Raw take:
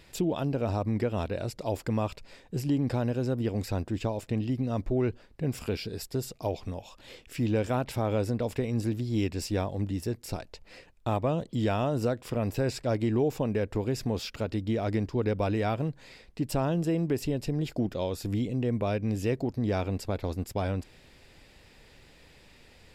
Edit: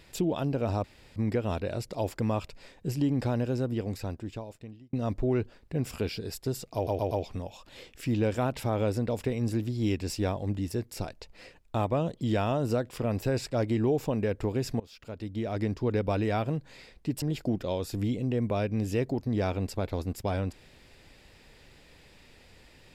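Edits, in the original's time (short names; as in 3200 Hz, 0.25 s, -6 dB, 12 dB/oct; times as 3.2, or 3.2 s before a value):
0.84 insert room tone 0.32 s
3.19–4.61 fade out
6.43 stutter 0.12 s, 4 plays
14.12–15.1 fade in, from -23 dB
16.54–17.53 cut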